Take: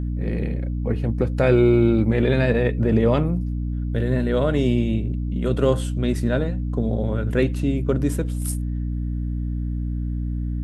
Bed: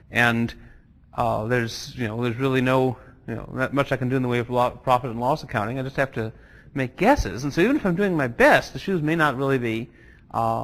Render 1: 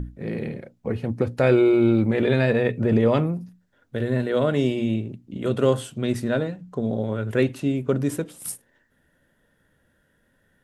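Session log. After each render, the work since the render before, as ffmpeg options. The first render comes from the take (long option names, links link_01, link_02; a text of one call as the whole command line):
ffmpeg -i in.wav -af "bandreject=frequency=60:width_type=h:width=6,bandreject=frequency=120:width_type=h:width=6,bandreject=frequency=180:width_type=h:width=6,bandreject=frequency=240:width_type=h:width=6,bandreject=frequency=300:width_type=h:width=6" out.wav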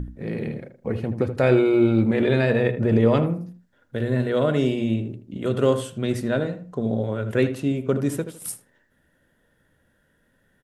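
ffmpeg -i in.wav -filter_complex "[0:a]asplit=2[link_01][link_02];[link_02]adelay=79,lowpass=frequency=1700:poles=1,volume=-9.5dB,asplit=2[link_03][link_04];[link_04]adelay=79,lowpass=frequency=1700:poles=1,volume=0.28,asplit=2[link_05][link_06];[link_06]adelay=79,lowpass=frequency=1700:poles=1,volume=0.28[link_07];[link_01][link_03][link_05][link_07]amix=inputs=4:normalize=0" out.wav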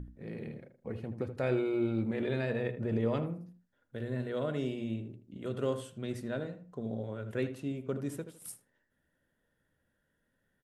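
ffmpeg -i in.wav -af "volume=-13dB" out.wav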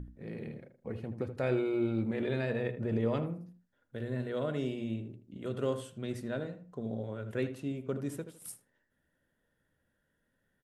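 ffmpeg -i in.wav -af anull out.wav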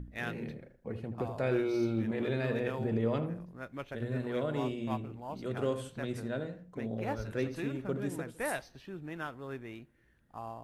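ffmpeg -i in.wav -i bed.wav -filter_complex "[1:a]volume=-20dB[link_01];[0:a][link_01]amix=inputs=2:normalize=0" out.wav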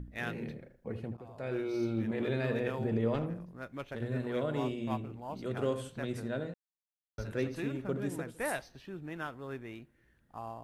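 ffmpeg -i in.wav -filter_complex "[0:a]asettb=1/sr,asplit=3[link_01][link_02][link_03];[link_01]atrim=end=3.144[link_04];[link_02]atrim=start=3.14:end=4.08,asetpts=PTS-STARTPTS,afade=type=in:duration=0.004:curve=qsin,afade=type=out:start_time=0.936:duration=0.004:curve=qsin,aeval=exprs='clip(val(0),-1,0.02)':channel_layout=same[link_05];[link_03]atrim=start=4.076[link_06];[link_04][link_05]acrossfade=duration=0.004:curve1=hsin:curve2=qsin[link_07];[link_07][link_06]acrossfade=duration=0.004:curve1=qsin:curve2=hsin,asplit=4[link_08][link_09][link_10][link_11];[link_08]atrim=end=1.17,asetpts=PTS-STARTPTS,afade=type=out:start_time=1.166:duration=0.004:curve=hsin:silence=0.125893[link_12];[link_09]atrim=start=1.17:end=6.54,asetpts=PTS-STARTPTS,afade=type=in:duration=1.21:curve=qsin:silence=0.125893,afade=type=out:start_time=5.366:duration=0.004:curve=hsin[link_13];[link_10]atrim=start=6.54:end=7.18,asetpts=PTS-STARTPTS,volume=0[link_14];[link_11]atrim=start=7.18,asetpts=PTS-STARTPTS,afade=type=in:duration=0.004:curve=hsin[link_15];[link_12][link_13][link_14][link_15]concat=n=4:v=0:a=1" out.wav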